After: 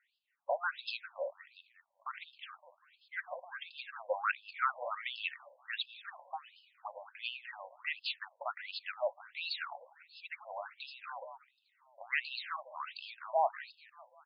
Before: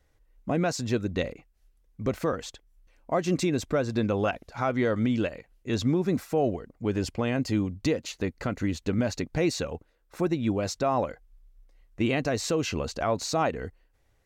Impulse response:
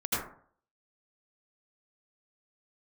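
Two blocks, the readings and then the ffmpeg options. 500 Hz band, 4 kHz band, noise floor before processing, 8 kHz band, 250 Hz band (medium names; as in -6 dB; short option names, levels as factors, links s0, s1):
-13.5 dB, -4.5 dB, -67 dBFS, under -40 dB, under -40 dB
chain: -filter_complex "[0:a]asubboost=boost=5.5:cutoff=100,acrossover=split=390|770|3900[s0][s1][s2][s3];[s0]aeval=exprs='0.178*(cos(1*acos(clip(val(0)/0.178,-1,1)))-cos(1*PI/2))+0.01*(cos(5*acos(clip(val(0)/0.178,-1,1)))-cos(5*PI/2))':c=same[s4];[s1]acompressor=threshold=0.01:ratio=6[s5];[s4][s5][s2][s3]amix=inputs=4:normalize=0,asplit=6[s6][s7][s8][s9][s10][s11];[s7]adelay=194,afreqshift=-32,volume=0.158[s12];[s8]adelay=388,afreqshift=-64,volume=0.0841[s13];[s9]adelay=582,afreqshift=-96,volume=0.0447[s14];[s10]adelay=776,afreqshift=-128,volume=0.0237[s15];[s11]adelay=970,afreqshift=-160,volume=0.0124[s16];[s6][s12][s13][s14][s15][s16]amix=inputs=6:normalize=0,afftfilt=real='re*between(b*sr/1024,710*pow(3700/710,0.5+0.5*sin(2*PI*1.4*pts/sr))/1.41,710*pow(3700/710,0.5+0.5*sin(2*PI*1.4*pts/sr))*1.41)':imag='im*between(b*sr/1024,710*pow(3700/710,0.5+0.5*sin(2*PI*1.4*pts/sr))/1.41,710*pow(3700/710,0.5+0.5*sin(2*PI*1.4*pts/sr))*1.41)':win_size=1024:overlap=0.75,volume=1.41"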